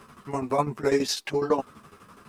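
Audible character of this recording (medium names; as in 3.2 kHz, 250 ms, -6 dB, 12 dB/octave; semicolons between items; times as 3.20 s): tremolo saw down 12 Hz, depth 85%; a quantiser's noise floor 12-bit, dither none; a shimmering, thickened sound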